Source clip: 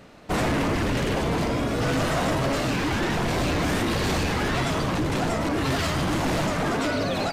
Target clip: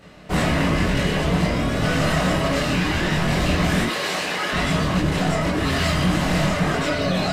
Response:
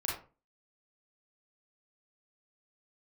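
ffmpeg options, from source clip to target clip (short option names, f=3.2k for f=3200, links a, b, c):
-filter_complex "[0:a]asettb=1/sr,asplit=3[a][b][c];[a]atrim=end=3.864[d];[b]atrim=start=3.86:end=4.53,asetpts=PTS-STARTPTS,afade=t=in:d=0.004:c=qsin,afade=t=out:st=0.666:d=0.004:c=qsin,highpass=410[e];[c]atrim=start=4.526[f];[d][e]acrossfade=d=0.004:c1=hsin:c2=qsin[g];[g][f]acrossfade=d=0.004:c1=qsin:c2=hsin[h];[1:a]atrim=start_sample=2205,atrim=end_sample=3528,asetrate=79380,aresample=44100[i];[h][i]afir=irnorm=-1:irlink=0,volume=5dB"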